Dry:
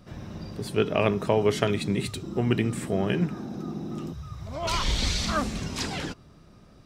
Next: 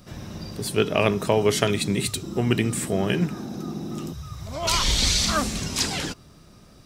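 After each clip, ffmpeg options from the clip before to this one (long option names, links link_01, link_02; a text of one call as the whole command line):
ffmpeg -i in.wav -af "highshelf=frequency=4400:gain=12,volume=2dB" out.wav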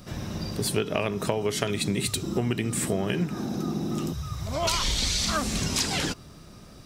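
ffmpeg -i in.wav -af "acompressor=threshold=-25dB:ratio=12,volume=3dB" out.wav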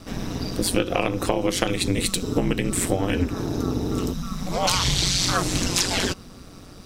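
ffmpeg -i in.wav -af "aeval=exprs='val(0)*sin(2*PI*92*n/s)':channel_layout=same,volume=7dB" out.wav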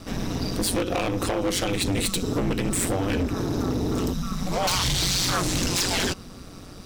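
ffmpeg -i in.wav -af "volume=21dB,asoftclip=hard,volume=-21dB,volume=1.5dB" out.wav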